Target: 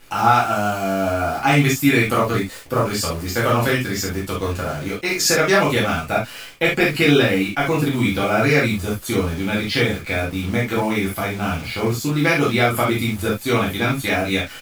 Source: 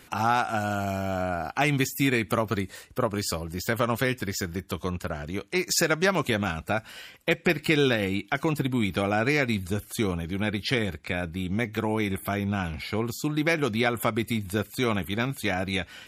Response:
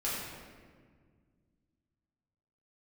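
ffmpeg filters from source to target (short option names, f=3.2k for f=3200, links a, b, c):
-filter_complex "[0:a]acrusher=bits=8:dc=4:mix=0:aa=0.000001,atempo=1.1[a];[1:a]atrim=start_sample=2205,atrim=end_sample=3528[b];[a][b]afir=irnorm=-1:irlink=0,volume=4.5dB"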